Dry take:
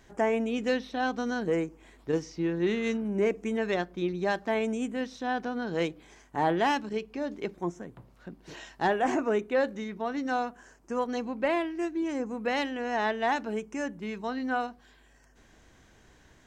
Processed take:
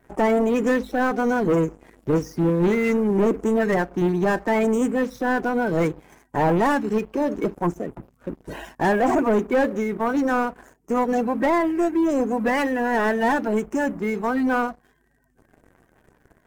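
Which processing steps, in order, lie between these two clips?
spectral magnitudes quantised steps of 30 dB
leveller curve on the samples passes 3
parametric band 4,000 Hz −12.5 dB 1.6 octaves
level +2 dB

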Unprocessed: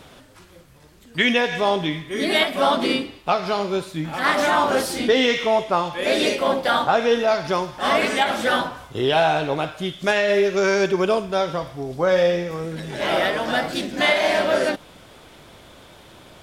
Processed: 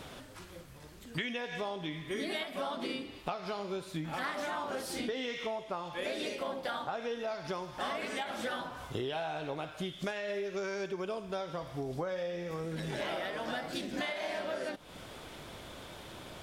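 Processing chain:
downward compressor 12 to 1, threshold −32 dBFS, peak gain reduction 19.5 dB
level −1.5 dB

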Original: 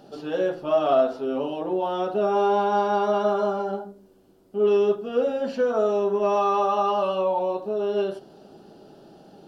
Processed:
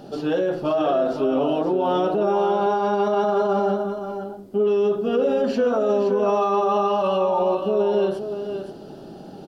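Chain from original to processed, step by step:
low-shelf EQ 390 Hz +5 dB
brickwall limiter −20 dBFS, peak gain reduction 11 dB
single-tap delay 522 ms −8.5 dB
level +6 dB

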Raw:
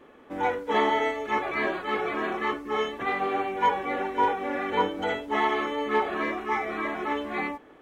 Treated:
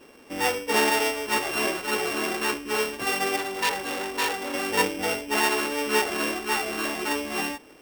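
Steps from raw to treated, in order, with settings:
samples sorted by size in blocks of 16 samples
0:03.36–0:04.54: saturating transformer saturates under 3,100 Hz
level +1.5 dB

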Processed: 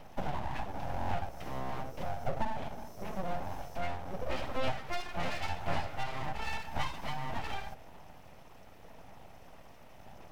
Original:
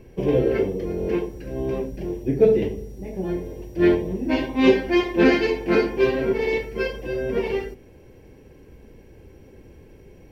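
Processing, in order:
high-pass filter 190 Hz 24 dB per octave
downward compressor 4 to 1, threshold −31 dBFS, peak gain reduction 17 dB
phase shifter 0.88 Hz, delay 1.5 ms, feedback 25%
full-wave rectification

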